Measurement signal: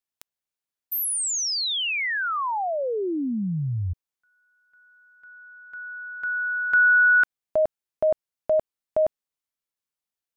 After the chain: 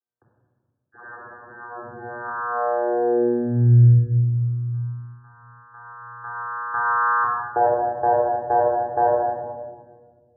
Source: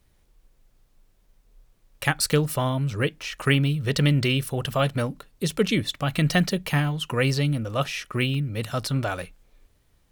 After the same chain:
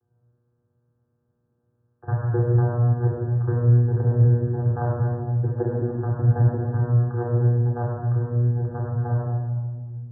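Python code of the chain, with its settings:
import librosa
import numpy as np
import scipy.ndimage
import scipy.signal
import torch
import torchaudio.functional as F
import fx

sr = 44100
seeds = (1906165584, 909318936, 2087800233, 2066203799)

y = fx.bit_reversed(x, sr, seeds[0], block=16)
y = fx.peak_eq(y, sr, hz=160.0, db=-6.0, octaves=0.86)
y = fx.vocoder(y, sr, bands=8, carrier='saw', carrier_hz=120.0)
y = fx.brickwall_lowpass(y, sr, high_hz=1800.0)
y = fx.room_shoebox(y, sr, seeds[1], volume_m3=1800.0, walls='mixed', distance_m=3.7)
y = fx.dynamic_eq(y, sr, hz=220.0, q=2.0, threshold_db=-37.0, ratio=4.0, max_db=-7)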